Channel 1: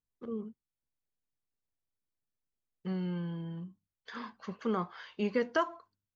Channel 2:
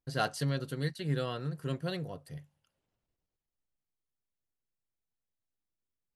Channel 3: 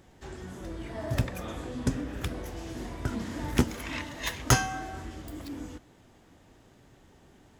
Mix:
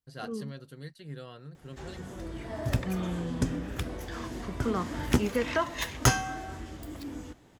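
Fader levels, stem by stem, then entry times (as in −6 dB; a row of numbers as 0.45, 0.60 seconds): +1.0, −10.0, −0.5 decibels; 0.00, 0.00, 1.55 seconds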